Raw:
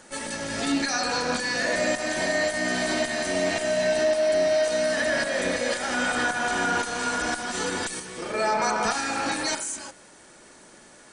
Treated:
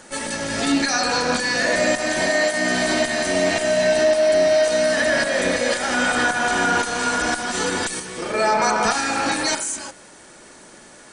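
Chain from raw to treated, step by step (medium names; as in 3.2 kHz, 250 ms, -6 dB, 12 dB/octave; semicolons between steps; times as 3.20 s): 2.29–2.69 s: high-pass 260 Hz -> 110 Hz 12 dB/octave; trim +5.5 dB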